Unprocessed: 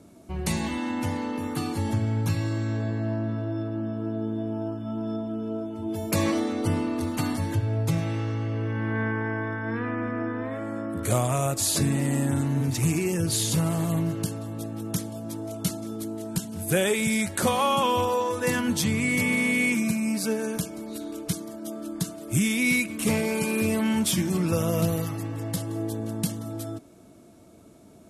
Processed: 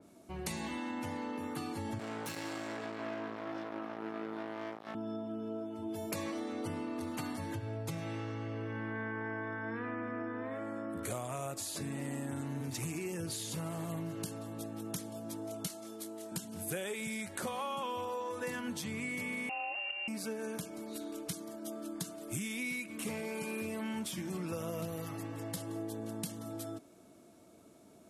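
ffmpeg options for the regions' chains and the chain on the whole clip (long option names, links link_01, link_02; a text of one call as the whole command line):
ffmpeg -i in.wav -filter_complex "[0:a]asettb=1/sr,asplit=3[link_01][link_02][link_03];[link_01]atrim=end=1.994[link_04];[link_02]atrim=start=1.99:end=4.95,asetpts=PTS-STARTPTS,afade=type=in:duration=0.004:curve=qsin,afade=type=out:start_time=2.956:duration=0.004:curve=qsin,bass=frequency=250:gain=-7,treble=frequency=4000:gain=3,acrusher=bits=4:mix=0:aa=0.5,highpass=160[link_05];[link_03]atrim=start=4.946[link_06];[link_04][link_05]acrossfade=duration=0.004:curve1=hsin:curve2=qsin[link_07];[link_07][link_06]acrossfade=duration=0.004:curve1=qsin:curve2=hsin,asettb=1/sr,asplit=3[link_08][link_09][link_10];[link_08]atrim=end=15.674[link_11];[link_09]atrim=start=15.67:end=16.32,asetpts=PTS-STARTPTS,afade=type=in:duration=0.004:curve=qsin,afade=type=out:start_time=0.646:duration=0.004:curve=qsin,highpass=frequency=660:poles=1,asplit=2[link_12][link_13];[link_13]adelay=27,volume=-8dB[link_14];[link_12][link_14]amix=inputs=2:normalize=0,atrim=end_sample=28665[link_15];[link_10]atrim=start=16.316[link_16];[link_11][link_15]acrossfade=duration=0.004:curve1=hsin:curve2=qsin[link_17];[link_17][link_16]acrossfade=duration=0.004:curve1=qsin:curve2=hsin,asettb=1/sr,asplit=3[link_18][link_19][link_20];[link_18]atrim=end=19.494[link_21];[link_19]atrim=start=19.49:end=20.08,asetpts=PTS-STARTPTS,afade=type=in:duration=0.004:curve=qsin,afade=type=out:start_time=0.586:duration=0.004:curve=qsin,aeval=exprs='sgn(val(0))*max(abs(val(0))-0.0112,0)':channel_layout=same,lowpass=frequency=2600:width_type=q:width=0.5098,lowpass=frequency=2600:width_type=q:width=0.6013,lowpass=frequency=2600:width_type=q:width=0.9,lowpass=frequency=2600:width_type=q:width=2.563,afreqshift=-3000[link_22];[link_20]atrim=start=20.076[link_23];[link_21][link_22]acrossfade=duration=0.004:curve1=hsin:curve2=qsin[link_24];[link_24][link_23]acrossfade=duration=0.004:curve1=qsin:curve2=hsin,lowshelf=frequency=150:gain=-11.5,acompressor=threshold=-30dB:ratio=6,adynamicequalizer=threshold=0.00447:dfrequency=3200:dqfactor=0.7:tfrequency=3200:tqfactor=0.7:attack=5:release=100:ratio=0.375:range=2:mode=cutabove:tftype=highshelf,volume=-5dB" out.wav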